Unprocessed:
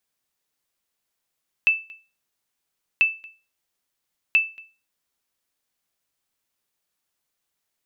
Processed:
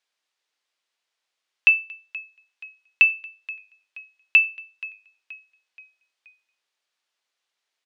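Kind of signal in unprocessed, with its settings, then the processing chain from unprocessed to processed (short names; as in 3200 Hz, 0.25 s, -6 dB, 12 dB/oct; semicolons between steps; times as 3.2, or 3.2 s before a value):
sonar ping 2640 Hz, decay 0.31 s, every 1.34 s, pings 3, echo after 0.23 s, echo -25 dB -10 dBFS
BPF 430–3700 Hz; high shelf 2600 Hz +10.5 dB; frequency-shifting echo 0.477 s, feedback 48%, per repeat -34 Hz, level -19 dB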